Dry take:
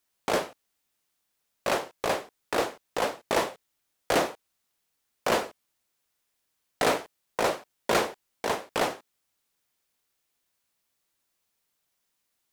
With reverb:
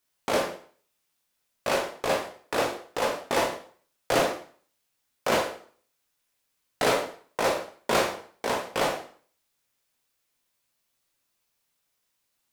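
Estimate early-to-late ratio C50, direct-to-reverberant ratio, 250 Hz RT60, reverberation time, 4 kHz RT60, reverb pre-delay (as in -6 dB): 7.5 dB, 1.0 dB, 0.50 s, 0.45 s, 0.45 s, 6 ms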